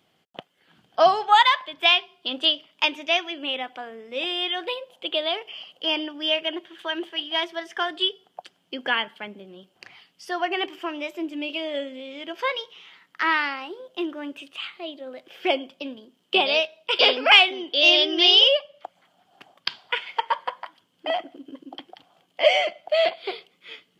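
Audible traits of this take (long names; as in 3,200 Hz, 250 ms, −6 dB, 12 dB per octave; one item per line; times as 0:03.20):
background noise floor −68 dBFS
spectral slope +3.5 dB per octave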